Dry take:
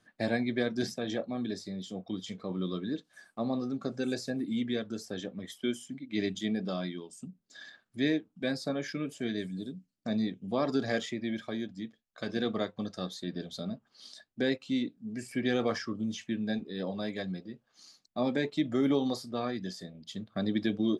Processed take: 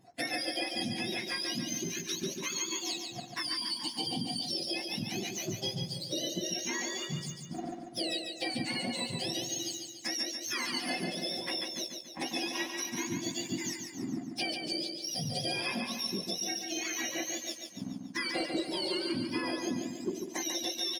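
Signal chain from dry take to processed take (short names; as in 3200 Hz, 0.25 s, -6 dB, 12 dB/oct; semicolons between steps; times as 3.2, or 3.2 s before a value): spectrum mirrored in octaves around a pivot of 1100 Hz; 3.42–4.42 spectral gain 1100–2700 Hz -14 dB; 18.33–20.37 bell 390 Hz +15 dB 1.8 oct; sample leveller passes 1; compressor 6:1, threshold -41 dBFS, peak gain reduction 20 dB; feedback echo 0.143 s, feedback 50%, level -5.5 dB; gain +7.5 dB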